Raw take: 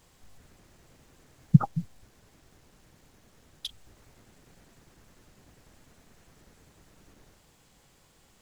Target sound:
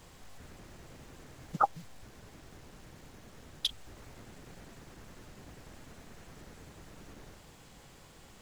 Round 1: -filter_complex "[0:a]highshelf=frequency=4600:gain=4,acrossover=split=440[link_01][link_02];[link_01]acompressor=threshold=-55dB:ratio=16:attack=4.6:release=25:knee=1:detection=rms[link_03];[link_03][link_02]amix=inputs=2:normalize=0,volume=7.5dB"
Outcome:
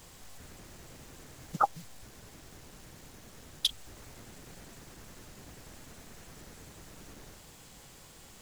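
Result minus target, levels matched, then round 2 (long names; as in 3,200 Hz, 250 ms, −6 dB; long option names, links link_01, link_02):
8,000 Hz band +5.5 dB
-filter_complex "[0:a]highshelf=frequency=4600:gain=-5,acrossover=split=440[link_01][link_02];[link_01]acompressor=threshold=-55dB:ratio=16:attack=4.6:release=25:knee=1:detection=rms[link_03];[link_03][link_02]amix=inputs=2:normalize=0,volume=7.5dB"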